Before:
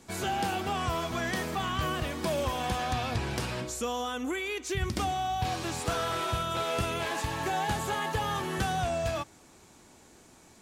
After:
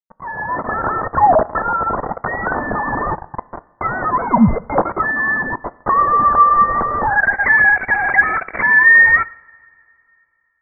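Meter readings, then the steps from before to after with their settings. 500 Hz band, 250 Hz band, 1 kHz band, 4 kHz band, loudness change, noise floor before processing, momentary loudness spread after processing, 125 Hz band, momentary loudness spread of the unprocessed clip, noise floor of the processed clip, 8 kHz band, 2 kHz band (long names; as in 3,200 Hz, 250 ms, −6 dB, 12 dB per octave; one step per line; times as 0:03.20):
+10.0 dB, +13.0 dB, +16.0 dB, below −40 dB, +17.0 dB, −57 dBFS, 13 LU, +6.0 dB, 3 LU, −61 dBFS, below −40 dB, +23.5 dB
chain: three sine waves on the formant tracks
bit reduction 6 bits
automatic gain control gain up to 13.5 dB
high-pass filter sweep 1,600 Hz → 210 Hz, 0:07.04–0:07.60
voice inversion scrambler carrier 2,500 Hz
coupled-rooms reverb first 0.57 s, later 2.8 s, from −18 dB, DRR 16.5 dB
level +3.5 dB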